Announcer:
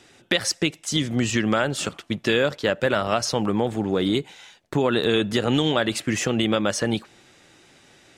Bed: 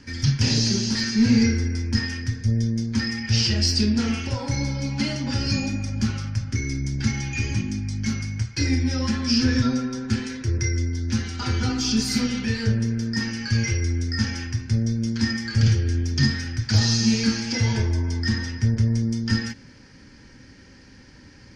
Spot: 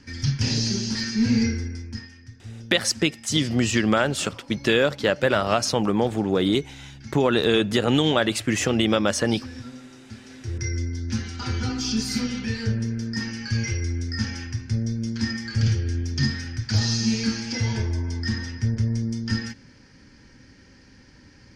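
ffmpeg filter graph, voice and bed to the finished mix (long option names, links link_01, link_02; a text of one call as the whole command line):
ffmpeg -i stem1.wav -i stem2.wav -filter_complex "[0:a]adelay=2400,volume=1dB[link_01];[1:a]volume=11.5dB,afade=type=out:start_time=1.41:duration=0.69:silence=0.188365,afade=type=in:start_time=10.21:duration=0.53:silence=0.188365[link_02];[link_01][link_02]amix=inputs=2:normalize=0" out.wav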